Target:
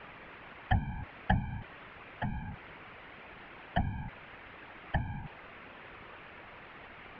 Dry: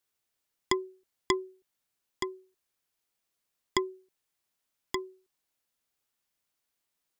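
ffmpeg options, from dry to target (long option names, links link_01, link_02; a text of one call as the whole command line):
ffmpeg -i in.wav -af "aeval=exprs='val(0)+0.5*0.0211*sgn(val(0))':channel_layout=same,highpass=frequency=220:width_type=q:width=0.5412,highpass=frequency=220:width_type=q:width=1.307,lowpass=frequency=2800:width_type=q:width=0.5176,lowpass=frequency=2800:width_type=q:width=0.7071,lowpass=frequency=2800:width_type=q:width=1.932,afreqshift=-270,afftfilt=real='hypot(re,im)*cos(2*PI*random(0))':imag='hypot(re,im)*sin(2*PI*random(1))':win_size=512:overlap=0.75,volume=5.5dB" out.wav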